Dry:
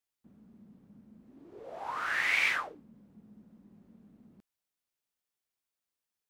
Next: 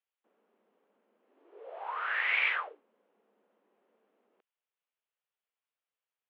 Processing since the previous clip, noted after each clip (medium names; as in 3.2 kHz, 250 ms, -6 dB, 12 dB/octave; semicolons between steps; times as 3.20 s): elliptic band-pass 440–3100 Hz, stop band 60 dB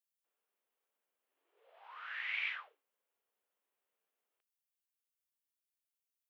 differentiator; attacks held to a fixed rise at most 130 dB/s; trim +1 dB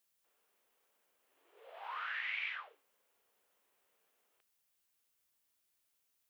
compression 4:1, threshold -50 dBFS, peak gain reduction 14 dB; trim +11 dB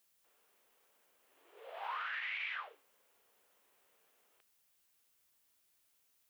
peak limiter -37 dBFS, peak gain reduction 9.5 dB; trim +5 dB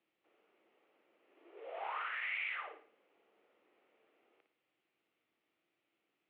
cabinet simulation 170–2600 Hz, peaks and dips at 330 Hz +10 dB, 1 kHz -7 dB, 1.6 kHz -8 dB; flutter echo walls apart 9.7 m, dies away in 0.44 s; trim +3.5 dB